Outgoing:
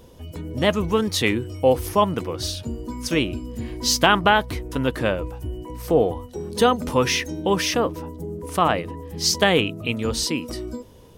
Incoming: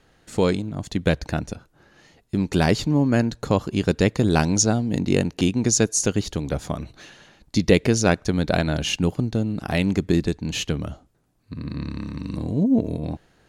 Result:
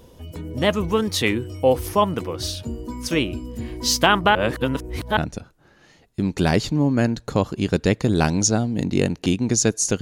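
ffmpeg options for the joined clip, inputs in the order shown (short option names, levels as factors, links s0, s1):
-filter_complex "[0:a]apad=whole_dur=10.01,atrim=end=10.01,asplit=2[s0][s1];[s0]atrim=end=4.352[s2];[s1]atrim=start=4.348:end=5.172,asetpts=PTS-STARTPTS,areverse[s3];[1:a]atrim=start=1.318:end=6.16[s4];[s2][s3]acrossfade=d=0.004:c1=hsin:c2=hsin[s5];[s5][s4]acrossfade=d=0.004:c1=hsin:c2=hsin"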